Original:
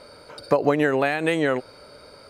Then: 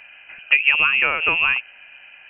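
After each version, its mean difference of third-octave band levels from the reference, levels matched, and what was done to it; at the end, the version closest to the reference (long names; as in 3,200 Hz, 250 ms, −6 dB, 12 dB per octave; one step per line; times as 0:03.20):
14.5 dB: adaptive Wiener filter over 9 samples
voice inversion scrambler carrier 3,000 Hz
level +3 dB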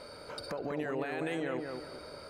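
8.5 dB: downward compressor, threshold −27 dBFS, peak gain reduction 13 dB
brickwall limiter −25 dBFS, peak gain reduction 11.5 dB
delay with a low-pass on its return 195 ms, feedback 36%, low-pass 1,900 Hz, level −4 dB
level −2 dB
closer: second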